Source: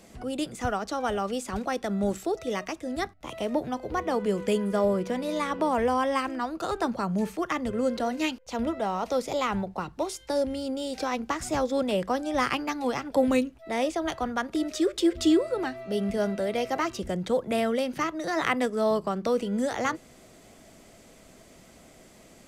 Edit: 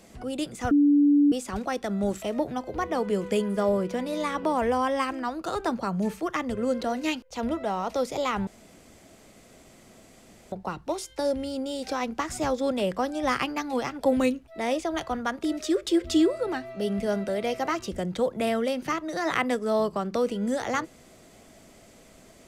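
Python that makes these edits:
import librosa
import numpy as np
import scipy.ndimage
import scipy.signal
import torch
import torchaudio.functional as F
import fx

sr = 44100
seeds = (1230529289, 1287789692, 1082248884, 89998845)

y = fx.edit(x, sr, fx.bleep(start_s=0.71, length_s=0.61, hz=289.0, db=-15.5),
    fx.cut(start_s=2.22, length_s=1.16),
    fx.insert_room_tone(at_s=9.63, length_s=2.05), tone=tone)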